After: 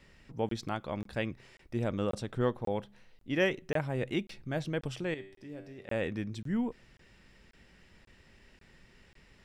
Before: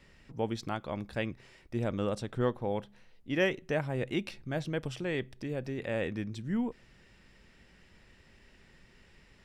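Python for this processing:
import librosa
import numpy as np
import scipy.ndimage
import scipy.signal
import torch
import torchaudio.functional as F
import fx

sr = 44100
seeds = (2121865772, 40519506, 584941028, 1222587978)

y = fx.comb_fb(x, sr, f0_hz=97.0, decay_s=0.71, harmonics='all', damping=0.0, mix_pct=80, at=(5.14, 5.89))
y = fx.buffer_crackle(y, sr, first_s=0.49, period_s=0.54, block=1024, kind='zero')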